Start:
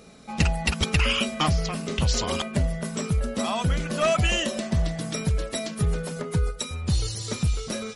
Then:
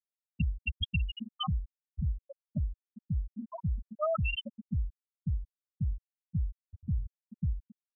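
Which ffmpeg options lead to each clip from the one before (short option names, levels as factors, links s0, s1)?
-af "afftfilt=real='re*gte(hypot(re,im),0.398)':imag='im*gte(hypot(re,im),0.398)':win_size=1024:overlap=0.75,aemphasis=mode=production:type=75fm,volume=0.473"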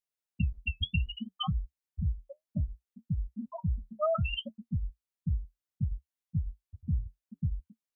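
-af "flanger=delay=6.1:depth=6.8:regen=-56:speed=0.65:shape=triangular,volume=1.78"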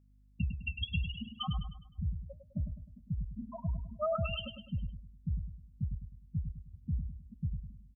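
-af "aeval=exprs='val(0)+0.00112*(sin(2*PI*50*n/s)+sin(2*PI*2*50*n/s)/2+sin(2*PI*3*50*n/s)/3+sin(2*PI*4*50*n/s)/4+sin(2*PI*5*50*n/s)/5)':c=same,aecho=1:1:103|206|309|412|515:0.398|0.171|0.0736|0.0317|0.0136,volume=0.631"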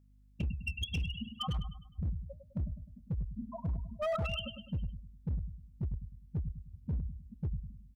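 -af "volume=33.5,asoftclip=hard,volume=0.0299,volume=1.12"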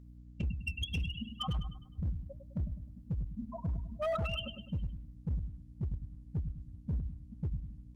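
-af "aeval=exprs='val(0)+0.00282*(sin(2*PI*60*n/s)+sin(2*PI*2*60*n/s)/2+sin(2*PI*3*60*n/s)/3+sin(2*PI*4*60*n/s)/4+sin(2*PI*5*60*n/s)/5)':c=same" -ar 48000 -c:a libopus -b:a 24k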